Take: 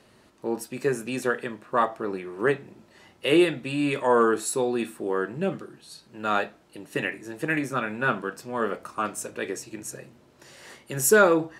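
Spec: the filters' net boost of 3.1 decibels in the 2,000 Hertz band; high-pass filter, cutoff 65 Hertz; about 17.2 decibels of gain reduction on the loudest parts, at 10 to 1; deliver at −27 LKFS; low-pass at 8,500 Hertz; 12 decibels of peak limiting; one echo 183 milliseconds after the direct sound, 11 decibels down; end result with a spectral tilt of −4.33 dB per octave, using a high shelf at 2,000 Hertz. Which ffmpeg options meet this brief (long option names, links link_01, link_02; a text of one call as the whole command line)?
ffmpeg -i in.wav -af "highpass=65,lowpass=8500,highshelf=frequency=2000:gain=-5,equalizer=frequency=2000:width_type=o:gain=7.5,acompressor=threshold=-30dB:ratio=10,alimiter=level_in=5dB:limit=-24dB:level=0:latency=1,volume=-5dB,aecho=1:1:183:0.282,volume=13dB" out.wav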